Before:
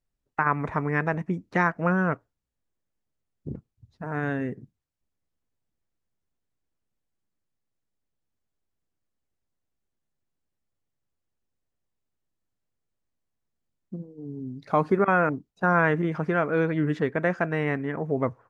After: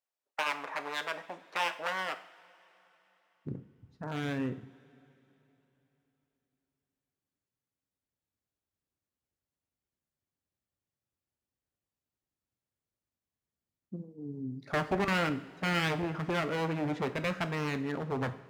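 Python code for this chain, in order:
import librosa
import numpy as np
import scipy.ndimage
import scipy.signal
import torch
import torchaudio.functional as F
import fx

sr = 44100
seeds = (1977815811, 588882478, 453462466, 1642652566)

y = np.minimum(x, 2.0 * 10.0 ** (-23.0 / 20.0) - x)
y = fx.filter_sweep_highpass(y, sr, from_hz=680.0, to_hz=62.0, start_s=2.9, end_s=3.78, q=1.2)
y = fx.rev_double_slope(y, sr, seeds[0], early_s=0.54, late_s=3.7, knee_db=-18, drr_db=8.5)
y = y * librosa.db_to_amplitude(-5.0)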